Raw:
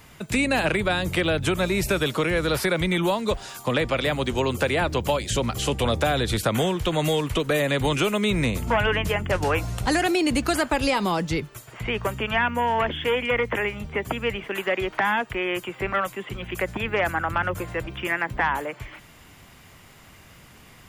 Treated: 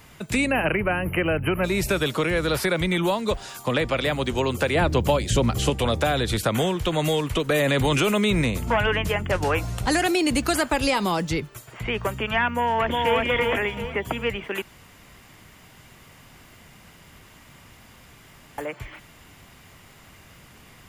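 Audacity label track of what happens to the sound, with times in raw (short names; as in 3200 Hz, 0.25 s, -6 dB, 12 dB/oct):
0.510000	1.640000	spectral delete 3100–10000 Hz
4.750000	5.700000	low shelf 500 Hz +6 dB
7.490000	8.420000	fast leveller amount 70%
9.900000	11.330000	high shelf 4900 Hz +4 dB
12.530000	13.220000	echo throw 0.36 s, feedback 35%, level -2 dB
14.620000	18.580000	room tone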